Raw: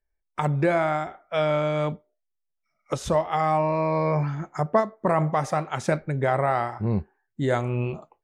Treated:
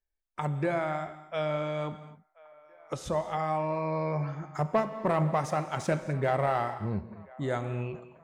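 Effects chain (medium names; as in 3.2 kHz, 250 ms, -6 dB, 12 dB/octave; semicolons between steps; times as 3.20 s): 4.55–6.74 s: waveshaping leveller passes 1; feedback echo behind a band-pass 1031 ms, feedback 57%, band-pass 1.1 kHz, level -22 dB; gated-style reverb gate 290 ms flat, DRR 11 dB; trim -7.5 dB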